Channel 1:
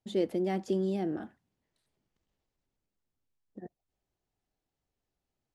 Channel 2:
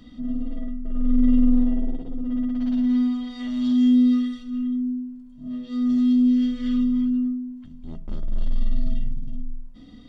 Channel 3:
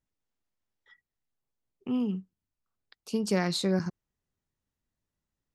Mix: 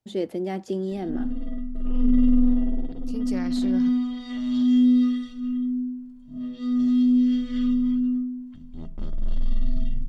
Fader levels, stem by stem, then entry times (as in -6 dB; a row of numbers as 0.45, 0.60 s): +2.0, -1.0, -8.0 dB; 0.00, 0.90, 0.00 s